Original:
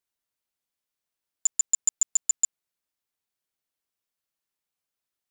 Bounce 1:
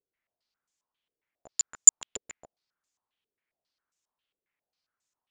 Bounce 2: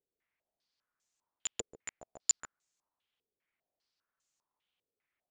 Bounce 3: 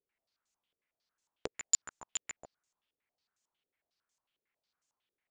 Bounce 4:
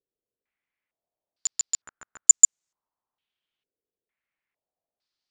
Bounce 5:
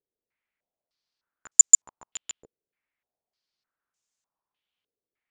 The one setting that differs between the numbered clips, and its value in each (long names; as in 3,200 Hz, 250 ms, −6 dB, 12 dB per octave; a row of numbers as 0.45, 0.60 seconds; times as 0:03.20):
low-pass on a step sequencer, speed: 7.4, 5, 11, 2.2, 3.3 Hertz